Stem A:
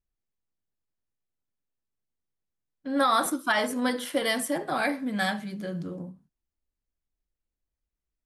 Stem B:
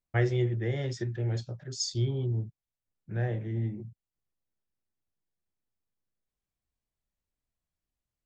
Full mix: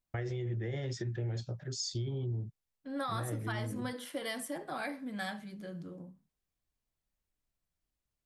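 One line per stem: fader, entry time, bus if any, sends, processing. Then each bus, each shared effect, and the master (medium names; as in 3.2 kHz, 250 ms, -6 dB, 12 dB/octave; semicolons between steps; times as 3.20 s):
-10.0 dB, 0.00 s, no send, none
+0.5 dB, 0.00 s, no send, peak limiter -26.5 dBFS, peak gain reduction 11.5 dB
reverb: none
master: compression 4:1, threshold -33 dBFS, peak gain reduction 6.5 dB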